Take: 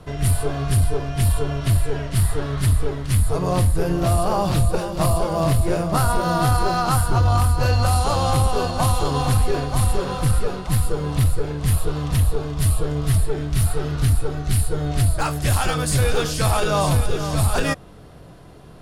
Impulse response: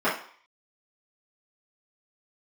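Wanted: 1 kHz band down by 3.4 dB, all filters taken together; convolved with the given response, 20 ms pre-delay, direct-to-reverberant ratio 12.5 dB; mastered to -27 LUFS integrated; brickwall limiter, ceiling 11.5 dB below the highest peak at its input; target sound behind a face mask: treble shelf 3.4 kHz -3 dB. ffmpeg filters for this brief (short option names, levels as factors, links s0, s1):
-filter_complex "[0:a]equalizer=f=1000:t=o:g=-4.5,alimiter=limit=0.0794:level=0:latency=1,asplit=2[s0][s1];[1:a]atrim=start_sample=2205,adelay=20[s2];[s1][s2]afir=irnorm=-1:irlink=0,volume=0.0376[s3];[s0][s3]amix=inputs=2:normalize=0,highshelf=f=3400:g=-3,volume=1.58"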